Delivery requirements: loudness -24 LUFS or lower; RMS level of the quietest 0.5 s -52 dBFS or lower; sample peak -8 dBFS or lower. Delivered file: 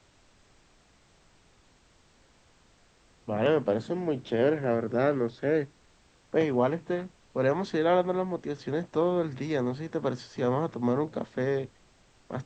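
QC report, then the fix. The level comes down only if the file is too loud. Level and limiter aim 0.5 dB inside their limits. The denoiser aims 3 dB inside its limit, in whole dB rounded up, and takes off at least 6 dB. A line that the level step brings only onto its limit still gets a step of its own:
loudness -29.0 LUFS: OK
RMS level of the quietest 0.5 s -62 dBFS: OK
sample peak -12.5 dBFS: OK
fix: none

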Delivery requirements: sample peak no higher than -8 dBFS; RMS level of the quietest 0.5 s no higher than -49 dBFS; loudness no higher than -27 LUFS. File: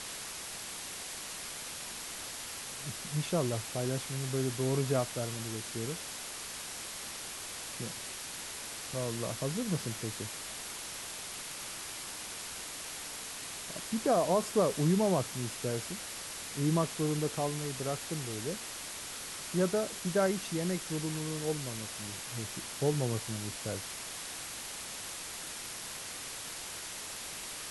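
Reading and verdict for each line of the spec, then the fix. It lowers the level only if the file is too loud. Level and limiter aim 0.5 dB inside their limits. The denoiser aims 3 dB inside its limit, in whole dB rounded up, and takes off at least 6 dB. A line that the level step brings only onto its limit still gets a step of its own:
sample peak -16.5 dBFS: OK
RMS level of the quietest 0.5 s -42 dBFS: fail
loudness -35.0 LUFS: OK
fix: denoiser 10 dB, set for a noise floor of -42 dBFS

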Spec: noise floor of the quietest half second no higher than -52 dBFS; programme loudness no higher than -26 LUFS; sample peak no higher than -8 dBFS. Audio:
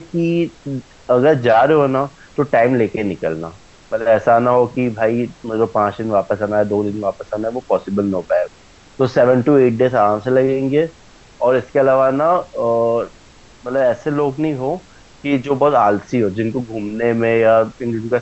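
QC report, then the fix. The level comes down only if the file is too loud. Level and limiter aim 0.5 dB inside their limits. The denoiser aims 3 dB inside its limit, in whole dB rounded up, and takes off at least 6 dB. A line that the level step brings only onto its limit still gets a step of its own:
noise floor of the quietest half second -45 dBFS: fail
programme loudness -16.5 LUFS: fail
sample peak -2.5 dBFS: fail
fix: gain -10 dB

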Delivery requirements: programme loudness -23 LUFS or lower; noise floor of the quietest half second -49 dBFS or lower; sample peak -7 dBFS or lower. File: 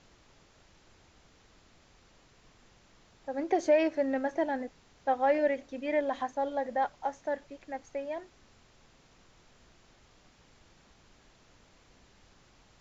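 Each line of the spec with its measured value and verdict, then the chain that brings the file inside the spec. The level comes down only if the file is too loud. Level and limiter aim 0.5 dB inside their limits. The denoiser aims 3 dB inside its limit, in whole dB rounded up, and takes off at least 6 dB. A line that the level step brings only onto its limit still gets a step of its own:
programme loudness -31.5 LUFS: OK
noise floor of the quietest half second -61 dBFS: OK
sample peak -15.0 dBFS: OK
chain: none

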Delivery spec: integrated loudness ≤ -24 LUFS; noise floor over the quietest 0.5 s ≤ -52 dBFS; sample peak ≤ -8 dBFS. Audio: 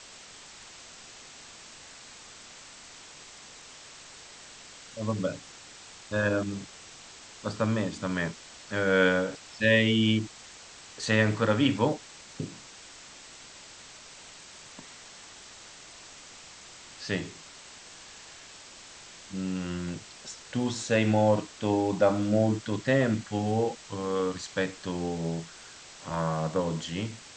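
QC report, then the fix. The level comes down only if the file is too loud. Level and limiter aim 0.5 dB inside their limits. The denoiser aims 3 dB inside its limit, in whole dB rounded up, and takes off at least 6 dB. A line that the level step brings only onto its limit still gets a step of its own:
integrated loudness -28.5 LUFS: OK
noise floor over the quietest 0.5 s -49 dBFS: fail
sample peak -9.0 dBFS: OK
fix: denoiser 6 dB, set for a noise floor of -49 dBFS

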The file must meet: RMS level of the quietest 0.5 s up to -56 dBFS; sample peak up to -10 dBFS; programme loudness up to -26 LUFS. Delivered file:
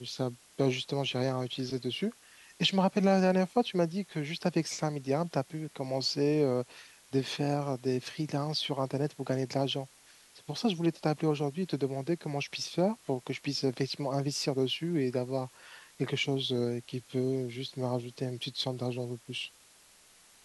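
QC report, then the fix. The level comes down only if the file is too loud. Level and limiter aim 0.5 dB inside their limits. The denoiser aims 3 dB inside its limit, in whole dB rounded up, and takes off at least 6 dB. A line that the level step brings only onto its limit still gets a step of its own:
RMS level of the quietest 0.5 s -60 dBFS: OK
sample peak -13.0 dBFS: OK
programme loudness -32.0 LUFS: OK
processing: none

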